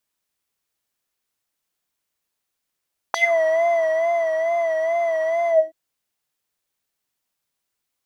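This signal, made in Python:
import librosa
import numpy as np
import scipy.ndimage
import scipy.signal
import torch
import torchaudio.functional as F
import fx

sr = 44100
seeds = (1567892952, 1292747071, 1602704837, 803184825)

y = fx.sub_patch_vibrato(sr, seeds[0], note=76, wave='triangle', wave2='square', interval_st=19, detune_cents=16, level2_db=-15, sub_db=-29.5, noise_db=-21.0, kind='bandpass', cutoff_hz=300.0, q=4.9, env_oct=4.0, env_decay_s=0.17, env_sustain_pct=45, attack_ms=1.7, decay_s=1.15, sustain_db=-4, release_s=0.22, note_s=2.36, lfo_hz=2.3, vibrato_cents=64)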